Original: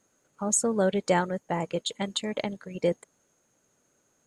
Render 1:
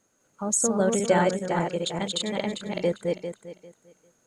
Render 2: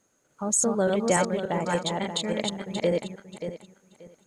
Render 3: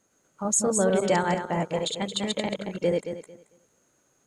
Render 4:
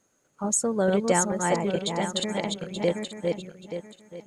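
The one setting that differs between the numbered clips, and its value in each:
feedback delay that plays each chunk backwards, delay time: 199, 291, 112, 440 milliseconds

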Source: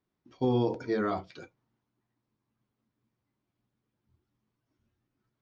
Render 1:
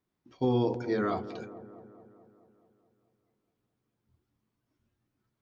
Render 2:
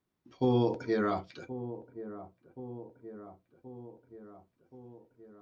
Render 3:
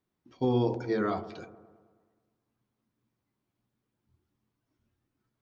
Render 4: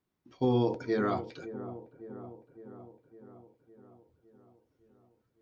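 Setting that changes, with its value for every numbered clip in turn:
delay with a low-pass on its return, delay time: 215, 1,076, 106, 559 milliseconds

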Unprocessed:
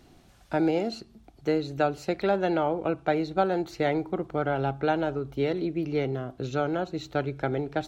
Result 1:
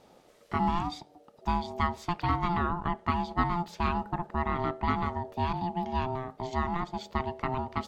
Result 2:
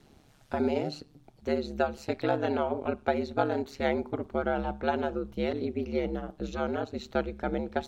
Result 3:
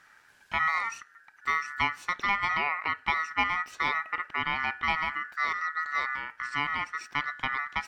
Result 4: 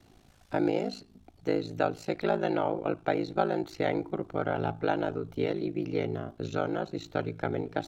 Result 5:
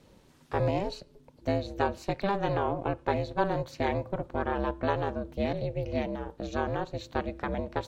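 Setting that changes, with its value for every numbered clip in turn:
ring modulation, frequency: 520, 71, 1,600, 27, 200 Hertz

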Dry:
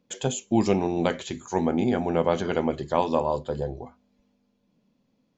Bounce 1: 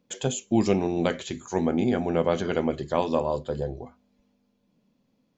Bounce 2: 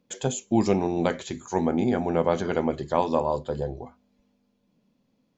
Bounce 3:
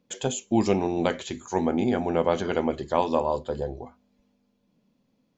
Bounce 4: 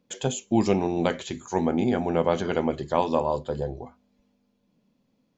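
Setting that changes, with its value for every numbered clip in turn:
dynamic equaliser, frequency: 890, 2,900, 150, 9,000 Hertz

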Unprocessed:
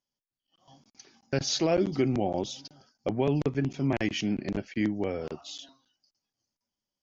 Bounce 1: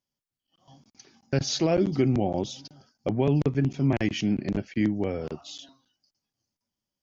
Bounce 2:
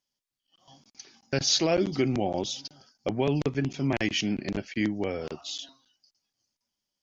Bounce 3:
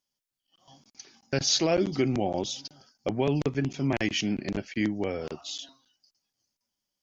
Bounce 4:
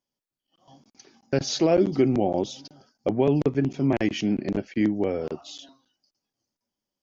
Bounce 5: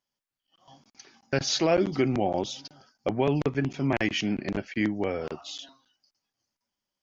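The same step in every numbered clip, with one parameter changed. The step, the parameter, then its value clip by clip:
parametric band, centre frequency: 110, 4,500, 16,000, 370, 1,500 Hertz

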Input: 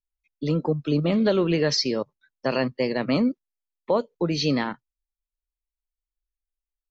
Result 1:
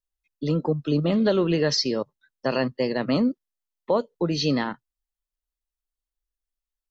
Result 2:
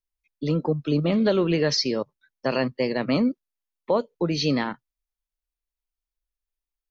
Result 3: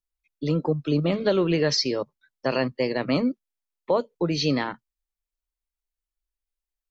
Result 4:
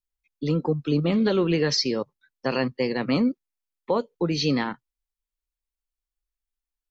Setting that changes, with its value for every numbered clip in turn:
notch filter, centre frequency: 2,300, 7,700, 220, 620 Hertz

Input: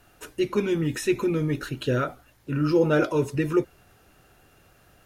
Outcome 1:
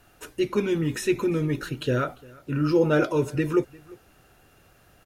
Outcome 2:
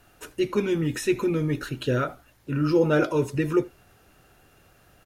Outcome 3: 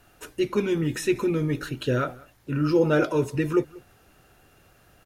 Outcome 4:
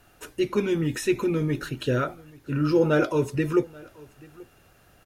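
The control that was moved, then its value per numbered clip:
single-tap delay, delay time: 348, 79, 189, 833 milliseconds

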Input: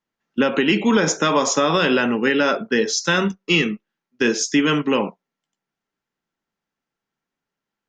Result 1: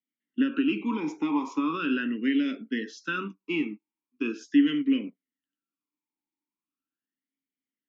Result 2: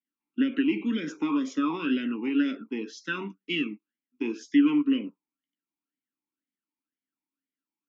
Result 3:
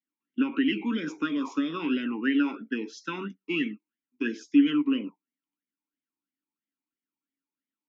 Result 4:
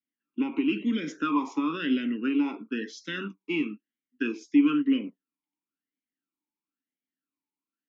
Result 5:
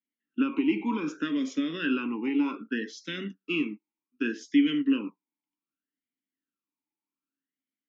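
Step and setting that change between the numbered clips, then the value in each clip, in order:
formant filter swept between two vowels, speed: 0.4, 2, 3, 1, 0.65 Hertz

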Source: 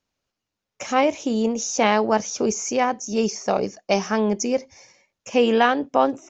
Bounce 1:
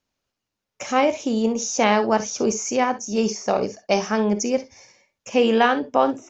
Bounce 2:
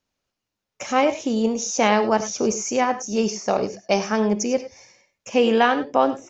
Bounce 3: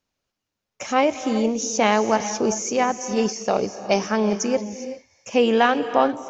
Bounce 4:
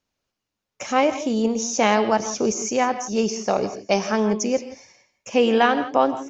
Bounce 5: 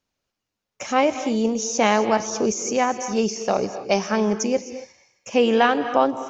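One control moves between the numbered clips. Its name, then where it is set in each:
reverb whose tail is shaped and stops, gate: 80, 120, 430, 190, 290 milliseconds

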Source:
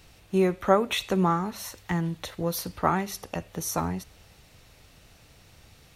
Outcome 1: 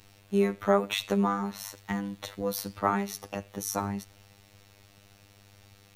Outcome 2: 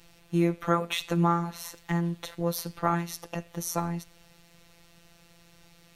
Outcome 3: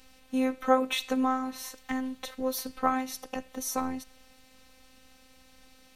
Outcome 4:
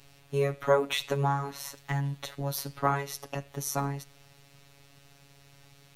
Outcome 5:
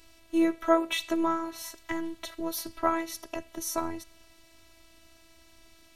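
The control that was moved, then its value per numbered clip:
phases set to zero, frequency: 100, 170, 260, 140, 330 Hertz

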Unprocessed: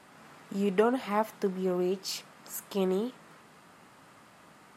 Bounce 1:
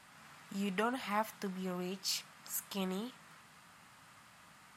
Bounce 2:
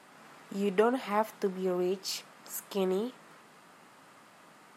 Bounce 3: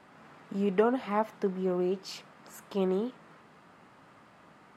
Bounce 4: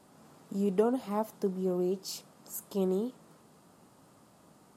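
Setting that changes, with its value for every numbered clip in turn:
parametric band, centre frequency: 390, 61, 14,000, 2,000 Hertz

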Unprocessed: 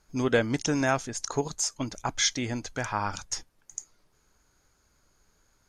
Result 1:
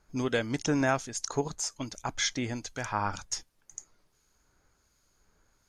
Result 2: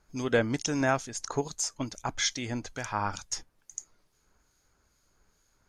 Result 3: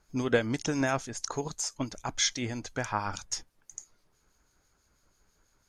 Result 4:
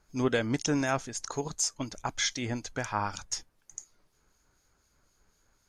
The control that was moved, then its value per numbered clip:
two-band tremolo in antiphase, speed: 1.3, 2.3, 6.1, 4 Hertz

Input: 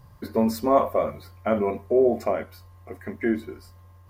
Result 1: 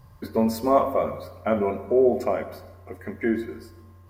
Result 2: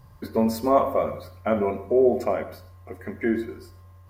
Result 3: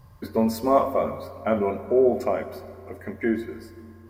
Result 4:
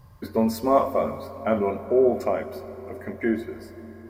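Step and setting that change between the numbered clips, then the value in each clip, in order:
dense smooth reverb, RT60: 1.1, 0.51, 2.3, 5.1 seconds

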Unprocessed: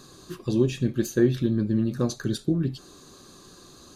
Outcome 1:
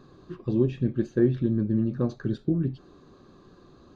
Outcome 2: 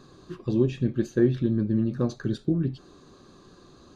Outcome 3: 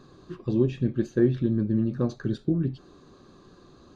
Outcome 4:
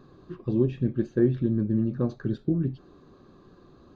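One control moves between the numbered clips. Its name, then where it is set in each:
head-to-tape spacing loss, at 10 kHz: 37, 20, 28, 46 decibels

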